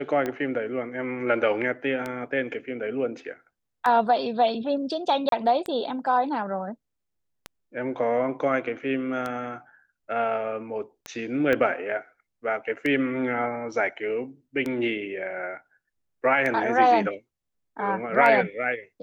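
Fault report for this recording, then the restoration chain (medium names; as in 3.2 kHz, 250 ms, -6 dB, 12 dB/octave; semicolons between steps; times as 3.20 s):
tick 33 1/3 rpm -16 dBFS
5.29–5.32 s: dropout 32 ms
11.53 s: pop -13 dBFS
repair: de-click; interpolate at 5.29 s, 32 ms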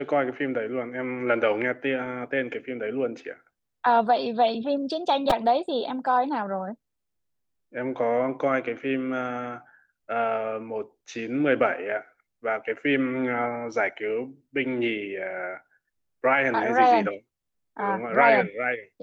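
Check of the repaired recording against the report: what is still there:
11.53 s: pop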